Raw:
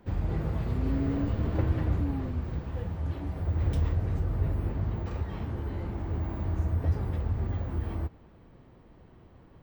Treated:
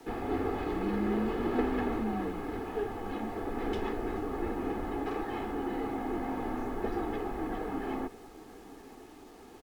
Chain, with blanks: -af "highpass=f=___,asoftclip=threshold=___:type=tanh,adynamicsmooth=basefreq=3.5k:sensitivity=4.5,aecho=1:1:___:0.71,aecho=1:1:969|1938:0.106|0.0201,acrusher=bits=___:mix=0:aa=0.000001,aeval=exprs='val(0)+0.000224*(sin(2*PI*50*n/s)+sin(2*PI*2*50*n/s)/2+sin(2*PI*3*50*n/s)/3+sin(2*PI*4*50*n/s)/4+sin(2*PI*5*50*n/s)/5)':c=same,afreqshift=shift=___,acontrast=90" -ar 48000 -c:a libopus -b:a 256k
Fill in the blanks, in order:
310, -29.5dB, 2.3, 10, -67